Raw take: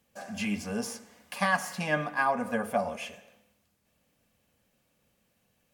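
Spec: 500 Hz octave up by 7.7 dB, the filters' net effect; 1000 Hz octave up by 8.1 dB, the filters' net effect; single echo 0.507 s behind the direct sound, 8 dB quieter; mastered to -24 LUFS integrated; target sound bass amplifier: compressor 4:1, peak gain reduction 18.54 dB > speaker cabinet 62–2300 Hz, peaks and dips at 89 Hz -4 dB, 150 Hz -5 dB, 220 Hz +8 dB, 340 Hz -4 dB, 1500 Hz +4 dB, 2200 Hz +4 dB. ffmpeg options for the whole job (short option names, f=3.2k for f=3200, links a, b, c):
-af "equalizer=f=500:t=o:g=7,equalizer=f=1k:t=o:g=7.5,aecho=1:1:507:0.398,acompressor=threshold=-37dB:ratio=4,highpass=f=62:w=0.5412,highpass=f=62:w=1.3066,equalizer=f=89:t=q:w=4:g=-4,equalizer=f=150:t=q:w=4:g=-5,equalizer=f=220:t=q:w=4:g=8,equalizer=f=340:t=q:w=4:g=-4,equalizer=f=1.5k:t=q:w=4:g=4,equalizer=f=2.2k:t=q:w=4:g=4,lowpass=f=2.3k:w=0.5412,lowpass=f=2.3k:w=1.3066,volume=13.5dB"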